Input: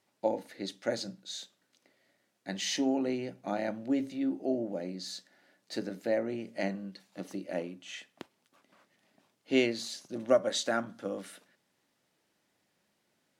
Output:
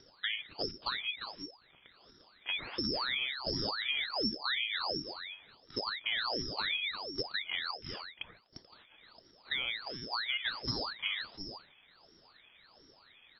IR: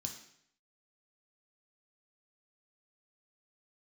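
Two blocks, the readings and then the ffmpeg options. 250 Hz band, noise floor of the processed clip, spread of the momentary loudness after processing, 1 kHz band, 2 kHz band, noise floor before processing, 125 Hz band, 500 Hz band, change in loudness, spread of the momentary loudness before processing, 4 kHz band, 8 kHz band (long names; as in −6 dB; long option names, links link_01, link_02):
−11.5 dB, −64 dBFS, 13 LU, −0.5 dB, +5.5 dB, −77 dBFS, −2.5 dB, −12.0 dB, −1.5 dB, 16 LU, +7.5 dB, below −20 dB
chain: -filter_complex "[0:a]aemphasis=mode=reproduction:type=riaa,acompressor=mode=upward:threshold=-48dB:ratio=2.5,aexciter=amount=1.3:drive=8.4:freq=2200,alimiter=limit=-19.5dB:level=0:latency=1:release=60,acompressor=threshold=-29dB:ratio=6,aecho=1:1:350:0.422,asplit=2[link_01][link_02];[1:a]atrim=start_sample=2205[link_03];[link_02][link_03]afir=irnorm=-1:irlink=0,volume=-16dB[link_04];[link_01][link_04]amix=inputs=2:normalize=0,lowpass=frequency=2600:width_type=q:width=0.5098,lowpass=frequency=2600:width_type=q:width=0.6013,lowpass=frequency=2600:width_type=q:width=0.9,lowpass=frequency=2600:width_type=q:width=2.563,afreqshift=-3100,aeval=exprs='val(0)*sin(2*PI*1500*n/s+1500*0.75/1.4*sin(2*PI*1.4*n/s))':channel_layout=same"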